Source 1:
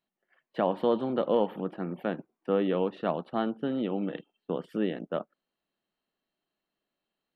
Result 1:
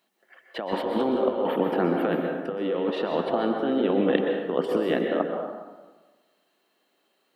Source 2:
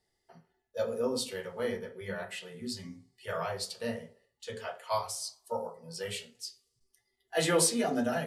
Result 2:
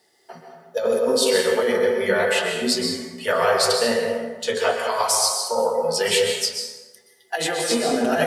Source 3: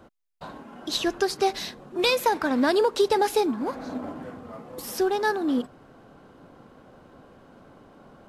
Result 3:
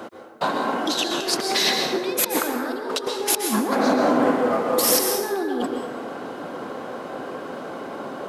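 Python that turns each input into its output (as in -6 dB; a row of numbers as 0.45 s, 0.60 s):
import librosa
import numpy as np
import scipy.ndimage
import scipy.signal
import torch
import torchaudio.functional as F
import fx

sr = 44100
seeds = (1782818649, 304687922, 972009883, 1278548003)

y = scipy.signal.sosfilt(scipy.signal.butter(2, 270.0, 'highpass', fs=sr, output='sos'), x)
y = fx.over_compress(y, sr, threshold_db=-36.0, ratio=-1.0)
y = fx.rev_plate(y, sr, seeds[0], rt60_s=1.3, hf_ratio=0.55, predelay_ms=110, drr_db=2.0)
y = librosa.util.normalize(y) * 10.0 ** (-6 / 20.0)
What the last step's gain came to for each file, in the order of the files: +9.0 dB, +14.5 dB, +10.0 dB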